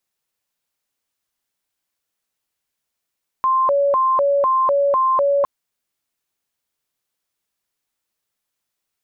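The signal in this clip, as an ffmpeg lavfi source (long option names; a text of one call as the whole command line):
ffmpeg -f lavfi -i "aevalsrc='0.211*sin(2*PI*(807*t+243/2*(0.5-abs(mod(2*t,1)-0.5))))':duration=2.01:sample_rate=44100" out.wav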